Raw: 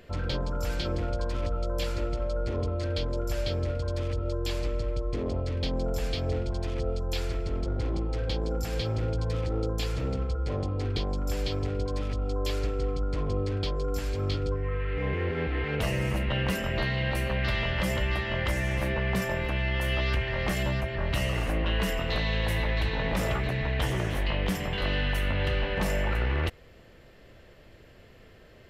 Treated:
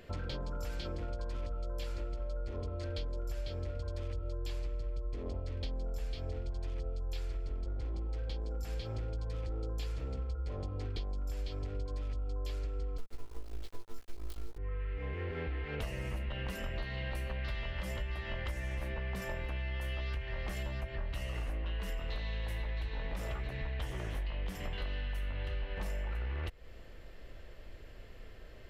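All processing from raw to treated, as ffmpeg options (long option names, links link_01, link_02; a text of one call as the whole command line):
ffmpeg -i in.wav -filter_complex "[0:a]asettb=1/sr,asplit=3[link_01][link_02][link_03];[link_01]atrim=end=12.984[link_04];[link_02]atrim=start=12.98:end=14.58,asetpts=PTS-STARTPTS,afade=type=in:duration=0.004:curve=qsin,afade=type=out:start_time=1.596:duration=0.004:curve=qsin,afreqshift=-43,acrusher=bits=4:dc=4:mix=0:aa=0.000001,asplit=2[link_05][link_06];[link_06]adelay=17,volume=-4dB[link_07];[link_05][link_07]amix=inputs=2:normalize=0,atrim=end_sample=70560[link_08];[link_03]atrim=start=14.576[link_09];[link_04][link_08]acrossfade=duration=0.004:curve1=hsin:curve2=qsin[link_10];[link_10][link_09]acrossfade=duration=0.004:curve1=qsin:curve2=hsin,asubboost=boost=4:cutoff=60,acompressor=threshold=-33dB:ratio=6,volume=-2dB" out.wav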